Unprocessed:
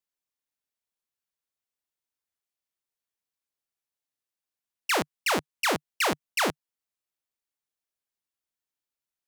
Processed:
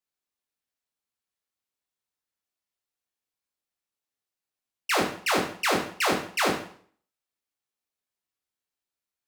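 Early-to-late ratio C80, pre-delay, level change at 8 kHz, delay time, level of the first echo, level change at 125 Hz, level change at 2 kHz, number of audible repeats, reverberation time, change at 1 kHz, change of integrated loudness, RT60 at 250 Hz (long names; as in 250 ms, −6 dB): 10.5 dB, 5 ms, 0.0 dB, no echo audible, no echo audible, +2.0 dB, +1.0 dB, no echo audible, 0.55 s, +2.0 dB, +1.5 dB, 0.55 s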